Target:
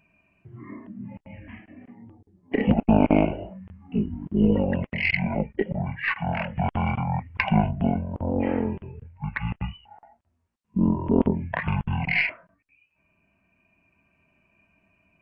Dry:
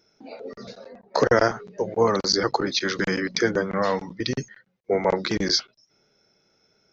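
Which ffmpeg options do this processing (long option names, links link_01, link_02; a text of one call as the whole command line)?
ffmpeg -i in.wav -af "tremolo=f=0.6:d=0.32,aeval=exprs='0.501*(cos(1*acos(clip(val(0)/0.501,-1,1)))-cos(1*PI/2))+0.0794*(cos(2*acos(clip(val(0)/0.501,-1,1)))-cos(2*PI/2))':channel_layout=same,asetrate=20066,aresample=44100" out.wav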